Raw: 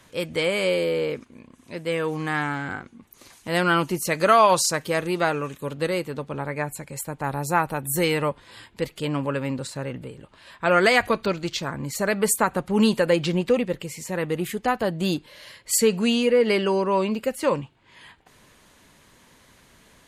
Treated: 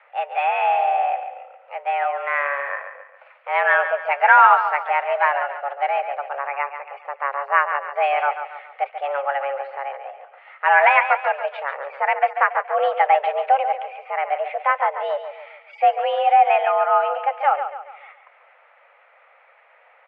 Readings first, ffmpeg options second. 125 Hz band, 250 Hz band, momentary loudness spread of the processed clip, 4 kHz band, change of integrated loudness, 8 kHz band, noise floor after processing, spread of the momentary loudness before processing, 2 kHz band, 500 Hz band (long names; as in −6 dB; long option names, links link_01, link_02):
below −40 dB, below −40 dB, 15 LU, −8.5 dB, +3.5 dB, below −40 dB, −54 dBFS, 13 LU, +6.0 dB, −0.5 dB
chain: -af "aecho=1:1:140|280|420|560|700:0.335|0.141|0.0591|0.0248|0.0104,highpass=frequency=270:width_type=q:width=0.5412,highpass=frequency=270:width_type=q:width=1.307,lowpass=frequency=2200:width_type=q:width=0.5176,lowpass=frequency=2200:width_type=q:width=0.7071,lowpass=frequency=2200:width_type=q:width=1.932,afreqshift=280,volume=4dB"